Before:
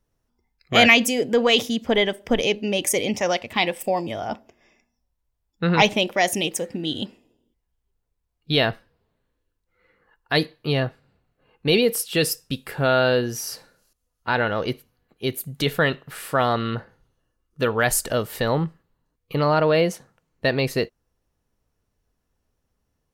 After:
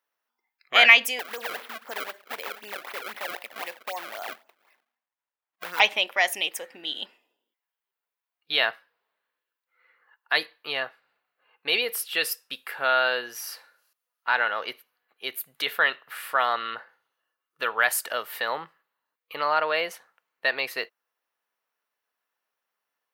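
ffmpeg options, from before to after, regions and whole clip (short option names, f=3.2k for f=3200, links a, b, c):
-filter_complex "[0:a]asettb=1/sr,asplit=3[a][b][c];[a]atrim=end=1.194[d];[b]atrim=start=1.19:end=5.8,asetpts=PTS-STARTPTS,afade=t=in:d=0.004:c=qsin,afade=t=out:st=4.606:d=0.004:c=qsin,acompressor=threshold=-26dB:ratio=2.5:attack=3.2:release=140:knee=1:detection=peak,bass=f=250:g=-1,treble=f=4k:g=-11,acrusher=samples=28:mix=1:aa=0.000001:lfo=1:lforange=44.8:lforate=3.9[e];[c]atrim=start=5.796[f];[d][e]acrossfade=d=0.004:c1=hsin:c2=qsin[g];[g][f]acrossfade=d=0.004:c1=qsin:c2=hsin,highpass=1.2k,equalizer=f=7.1k:t=o:w=1.7:g=-13.5,volume=4.5dB"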